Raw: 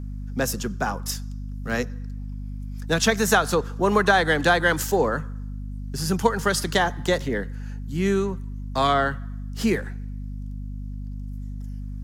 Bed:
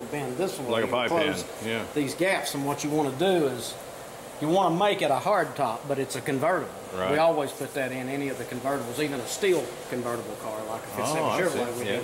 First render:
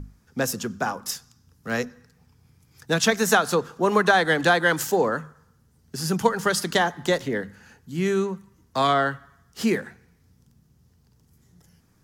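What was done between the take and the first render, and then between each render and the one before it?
mains-hum notches 50/100/150/200/250 Hz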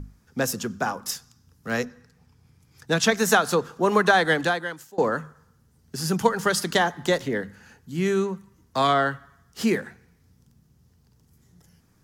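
0:01.84–0:03.20: high-shelf EQ 12,000 Hz −7 dB
0:04.33–0:04.98: fade out quadratic, to −23.5 dB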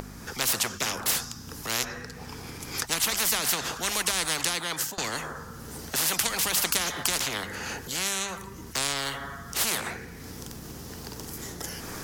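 upward compression, threshold −40 dBFS
every bin compressed towards the loudest bin 10 to 1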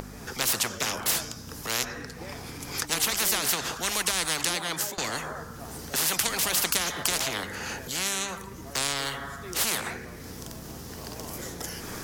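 mix in bed −19.5 dB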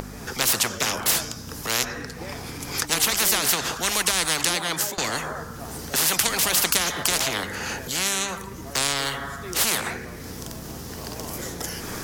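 level +4.5 dB
brickwall limiter −2 dBFS, peak gain reduction 1.5 dB

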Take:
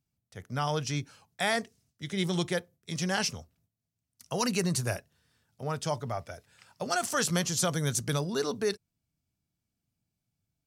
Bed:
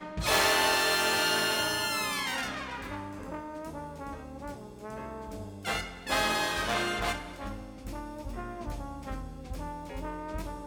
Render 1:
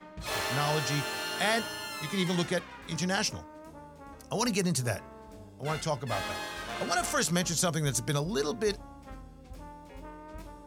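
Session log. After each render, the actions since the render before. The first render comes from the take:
mix in bed −8 dB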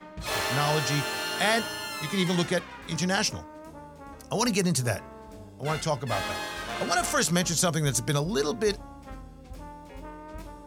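level +3.5 dB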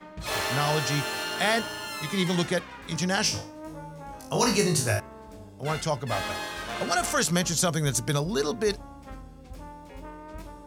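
0:01.24–0:01.88: slack as between gear wheels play −37 dBFS
0:03.22–0:05.00: flutter between parallel walls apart 3.3 metres, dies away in 0.36 s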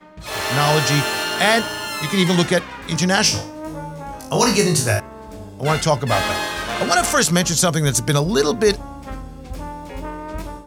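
automatic gain control gain up to 12 dB

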